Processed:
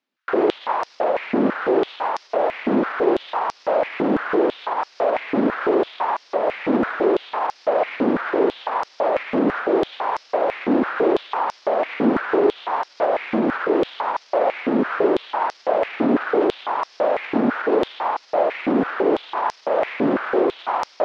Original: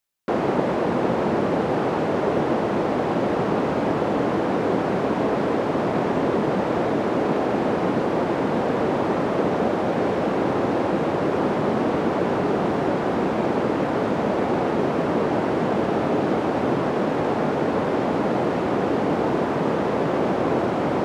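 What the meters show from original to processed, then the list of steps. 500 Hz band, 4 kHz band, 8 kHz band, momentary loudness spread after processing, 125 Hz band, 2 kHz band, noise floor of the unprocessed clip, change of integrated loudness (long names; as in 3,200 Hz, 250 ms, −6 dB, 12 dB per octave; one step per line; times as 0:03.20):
+1.5 dB, +1.0 dB, can't be measured, 5 LU, −11.0 dB, +2.5 dB, −24 dBFS, +1.0 dB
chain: high-shelf EQ 3,700 Hz +7.5 dB
brickwall limiter −20 dBFS, peak gain reduction 11.5 dB
high-frequency loss of the air 280 metres
high-pass on a step sequencer 6 Hz 250–5,300 Hz
level +5.5 dB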